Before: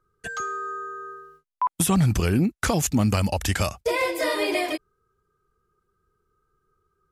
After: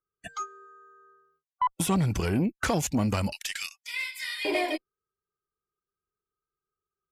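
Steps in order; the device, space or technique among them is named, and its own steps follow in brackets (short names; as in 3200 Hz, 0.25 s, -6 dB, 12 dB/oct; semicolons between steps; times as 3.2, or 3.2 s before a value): spectral noise reduction 19 dB; 3.32–4.45 inverse Chebyshev high-pass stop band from 330 Hz, stop band 80 dB; tube preamp driven hard (tube stage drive 15 dB, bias 0.25; low shelf 170 Hz -6.5 dB; high shelf 6400 Hz -8 dB)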